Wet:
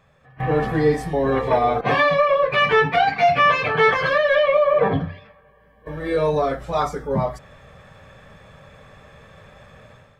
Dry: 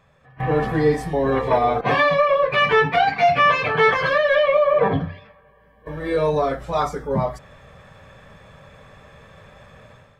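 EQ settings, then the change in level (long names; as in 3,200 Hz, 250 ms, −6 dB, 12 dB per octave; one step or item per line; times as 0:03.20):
notch filter 990 Hz, Q 29
0.0 dB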